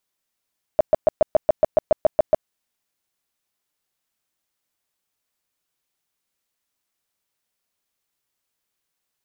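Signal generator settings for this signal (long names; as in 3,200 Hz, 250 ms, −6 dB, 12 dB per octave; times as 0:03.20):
tone bursts 623 Hz, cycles 10, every 0.14 s, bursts 12, −9.5 dBFS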